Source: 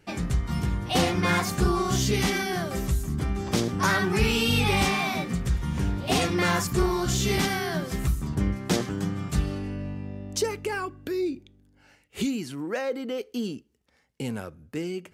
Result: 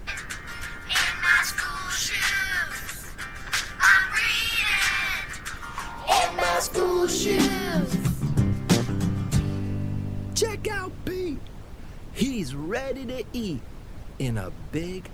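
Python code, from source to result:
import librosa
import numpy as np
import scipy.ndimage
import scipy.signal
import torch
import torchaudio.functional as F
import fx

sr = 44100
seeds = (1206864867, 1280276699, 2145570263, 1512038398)

y = fx.filter_sweep_highpass(x, sr, from_hz=1600.0, to_hz=110.0, start_s=5.37, end_s=8.44, q=4.4)
y = fx.dmg_noise_colour(y, sr, seeds[0], colour='brown', level_db=-37.0)
y = fx.hpss(y, sr, part='percussive', gain_db=8)
y = y * 10.0 ** (-4.0 / 20.0)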